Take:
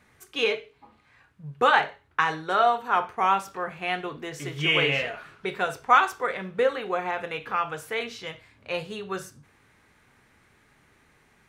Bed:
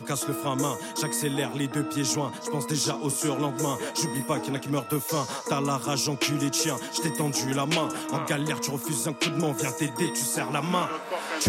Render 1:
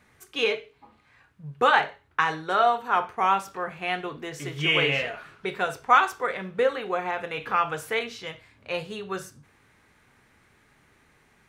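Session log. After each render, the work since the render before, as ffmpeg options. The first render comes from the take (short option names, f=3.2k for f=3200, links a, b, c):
-filter_complex "[0:a]asplit=3[a][b][c];[a]atrim=end=7.372[d];[b]atrim=start=7.368:end=7.992,asetpts=PTS-STARTPTS,volume=3dB[e];[c]atrim=start=7.988[f];[d][e]acrossfade=d=0.004:c1=hsin:c2=hsin[g];[g][f]acrossfade=d=0.004:c1=hsin:c2=hsin"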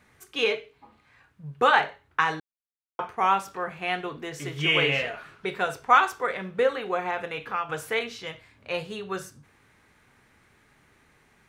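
-filter_complex "[0:a]asplit=4[a][b][c][d];[a]atrim=end=2.4,asetpts=PTS-STARTPTS,afade=t=out:st=2.396:d=0.004:c=hsin[e];[b]atrim=start=2.4:end=2.99,asetpts=PTS-STARTPTS,volume=0[f];[c]atrim=start=2.99:end=7.69,asetpts=PTS-STARTPTS,afade=t=in:d=0.004:c=hsin,afade=t=out:st=4.26:d=0.44:silence=0.354813[g];[d]atrim=start=7.69,asetpts=PTS-STARTPTS,afade=t=in:d=0.004:c=hsin:silence=0.354813[h];[e][f][g][h]concat=n=4:v=0:a=1"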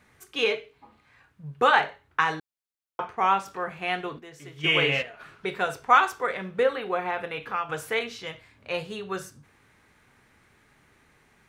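-filter_complex "[0:a]asettb=1/sr,asplit=3[a][b][c];[a]atrim=end=3.044[d];[b]atrim=start=3.04:end=3.46,asetpts=PTS-STARTPTS,afade=t=in:d=0.004:c=qsin,afade=t=out:st=0.416:d=0.004:c=qsin,equalizer=f=12k:w=1.2:g=-11.5[e];[c]atrim=start=3.456[f];[d][e]acrossfade=d=0.004:c1=hsin:c2=qsin[g];[g][f]acrossfade=d=0.004:c1=qsin:c2=hsin,asplit=3[h][i][j];[h]afade=t=out:st=4.18:d=0.02[k];[i]agate=range=-10dB:threshold=-28dB:ratio=16:release=100:detection=peak,afade=t=in:st=4.18:d=0.02,afade=t=out:st=5.19:d=0.02[l];[j]afade=t=in:st=5.19:d=0.02[m];[k][l][m]amix=inputs=3:normalize=0,asettb=1/sr,asplit=3[n][o][p];[n]atrim=end=6.634[q];[o]atrim=start=6.63:end=7.43,asetpts=PTS-STARTPTS,afade=t=in:d=0.004:c=qsin,afade=t=out:st=0.796:d=0.004:c=qsin,equalizer=f=6.8k:t=o:w=0.36:g=-11[r];[p]atrim=start=7.426[s];[q][r]acrossfade=d=0.004:c1=hsin:c2=qsin[t];[t][s]acrossfade=d=0.004:c1=qsin:c2=hsin"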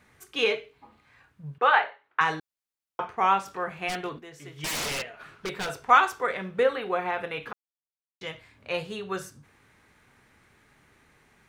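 -filter_complex "[0:a]asettb=1/sr,asplit=3[a][b][c];[a]atrim=end=1.584[d];[b]atrim=start=1.58:end=2.21,asetpts=PTS-STARTPTS,afade=t=in:d=0.004:c=qsin,afade=t=out:st=0.626:d=0.004:c=qsin,highpass=550,lowpass=2.9k[e];[c]atrim=start=2.206[f];[d][e]acrossfade=d=0.004:c1=hsin:c2=qsin[g];[g][f]acrossfade=d=0.004:c1=qsin:c2=hsin,asplit=3[h][i][j];[h]afade=t=out:st=3.88:d=0.02[k];[i]aeval=exprs='0.0531*(abs(mod(val(0)/0.0531+3,4)-2)-1)':c=same,afade=t=in:st=3.88:d=0.02,afade=t=out:st=5.88:d=0.02[l];[j]afade=t=in:st=5.88:d=0.02[m];[k][l][m]amix=inputs=3:normalize=0,asplit=3[n][o][p];[n]atrim=end=7.53,asetpts=PTS-STARTPTS,afade=t=out:st=7.526:d=0.004:c=hsin[q];[o]atrim=start=7.53:end=8.21,asetpts=PTS-STARTPTS,volume=0[r];[p]atrim=start=8.21,asetpts=PTS-STARTPTS,afade=t=in:d=0.004:c=hsin[s];[q][r][s]concat=n=3:v=0:a=1"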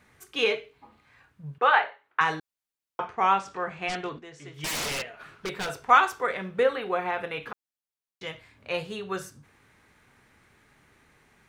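-filter_complex "[0:a]asettb=1/sr,asplit=3[a][b][c];[a]atrim=end=3.024[d];[b]atrim=start=3.02:end=4.54,asetpts=PTS-STARTPTS,afade=t=in:d=0.004:c=qsin,afade=t=out:st=1.516:d=0.004:c=qsin,lowpass=f=8.2k:w=0.5412,lowpass=f=8.2k:w=1.3066[e];[c]atrim=start=4.536[f];[d][e]acrossfade=d=0.004:c1=hsin:c2=qsin[g];[g][f]acrossfade=d=0.004:c1=qsin:c2=hsin"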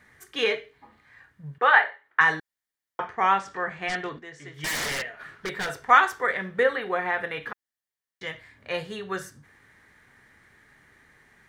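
-af "equalizer=f=1.8k:w=4.5:g=11,bandreject=f=2.6k:w=13"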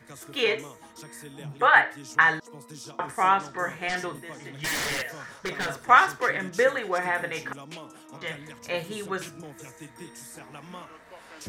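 -filter_complex "[1:a]volume=-16.5dB[a];[0:a][a]amix=inputs=2:normalize=0"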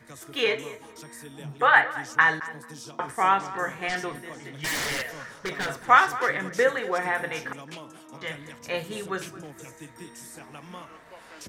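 -filter_complex "[0:a]asplit=2[a][b];[b]adelay=221,lowpass=f=2.4k:p=1,volume=-15.5dB,asplit=2[c][d];[d]adelay=221,lowpass=f=2.4k:p=1,volume=0.24[e];[a][c][e]amix=inputs=3:normalize=0"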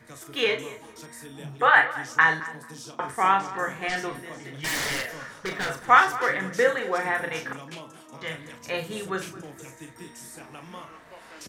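-filter_complex "[0:a]asplit=2[a][b];[b]adelay=37,volume=-7.5dB[c];[a][c]amix=inputs=2:normalize=0"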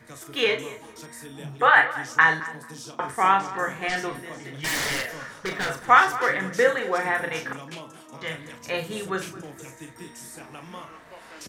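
-af "volume=1.5dB,alimiter=limit=-3dB:level=0:latency=1"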